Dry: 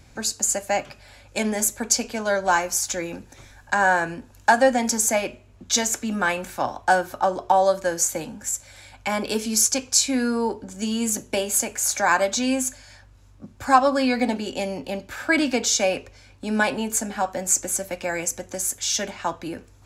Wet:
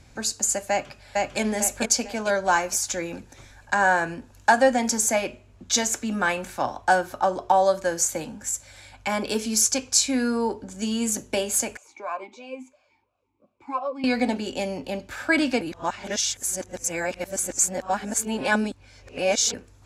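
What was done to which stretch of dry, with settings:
0.70–1.40 s: echo throw 450 ms, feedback 35%, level -0.5 dB
11.77–14.04 s: talking filter a-u 2.9 Hz
15.61–19.54 s: reverse
whole clip: low-pass 12 kHz 12 dB/octave; trim -1 dB

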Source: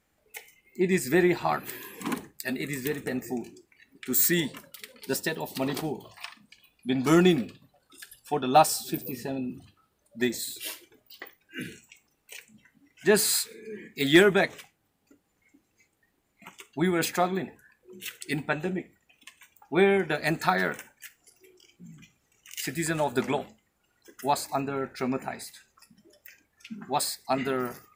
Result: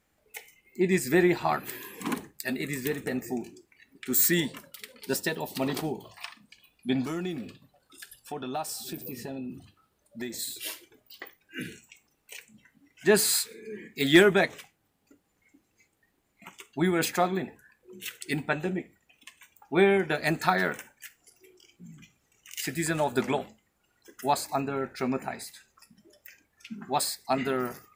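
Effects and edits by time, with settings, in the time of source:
7.04–10.39 s: compression 3:1, threshold -34 dBFS

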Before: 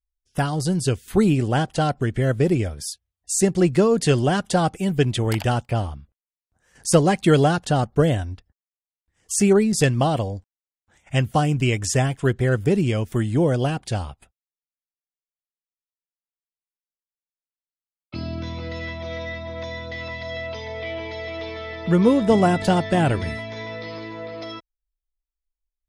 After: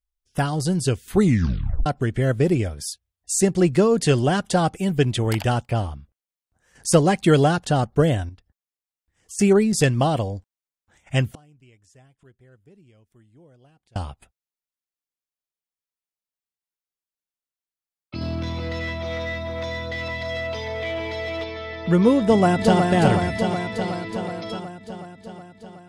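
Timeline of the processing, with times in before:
1.19 s: tape stop 0.67 s
8.29–9.39 s: compression 1.5:1, threshold -56 dBFS
11.33–13.96 s: inverted gate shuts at -27 dBFS, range -33 dB
18.21–21.44 s: waveshaping leveller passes 1
22.21–22.83 s: echo throw 370 ms, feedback 70%, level -4 dB

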